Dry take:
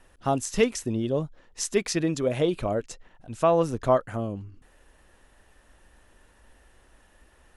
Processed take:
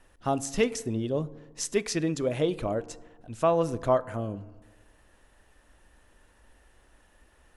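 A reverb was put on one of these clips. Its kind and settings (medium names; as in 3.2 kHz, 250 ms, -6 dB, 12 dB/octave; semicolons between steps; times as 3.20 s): FDN reverb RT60 1.4 s, low-frequency decay 1×, high-frequency decay 0.35×, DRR 16.5 dB; trim -2.5 dB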